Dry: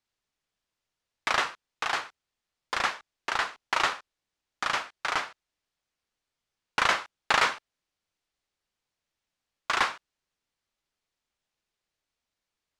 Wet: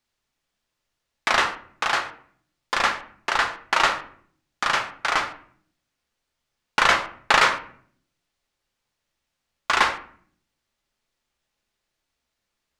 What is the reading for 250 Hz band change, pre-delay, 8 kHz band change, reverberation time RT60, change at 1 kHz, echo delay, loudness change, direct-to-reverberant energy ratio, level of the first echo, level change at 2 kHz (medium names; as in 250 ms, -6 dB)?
+7.0 dB, 3 ms, +5.5 dB, 0.55 s, +6.5 dB, no echo, +6.0 dB, 6.5 dB, no echo, +6.5 dB